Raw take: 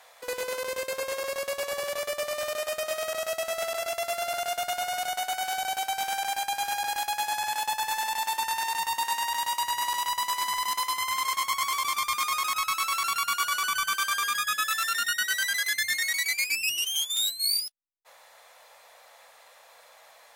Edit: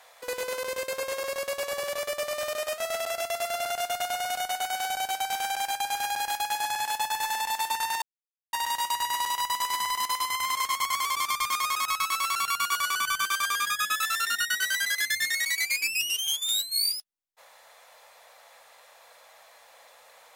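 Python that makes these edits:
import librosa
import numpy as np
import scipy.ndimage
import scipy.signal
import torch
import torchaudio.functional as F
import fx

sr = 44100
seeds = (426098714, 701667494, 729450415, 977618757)

y = fx.edit(x, sr, fx.cut(start_s=2.78, length_s=0.68),
    fx.silence(start_s=8.7, length_s=0.51), tone=tone)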